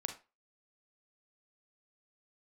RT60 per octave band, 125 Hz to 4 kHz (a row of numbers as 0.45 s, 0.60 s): 0.20 s, 0.25 s, 0.30 s, 0.30 s, 0.25 s, 0.25 s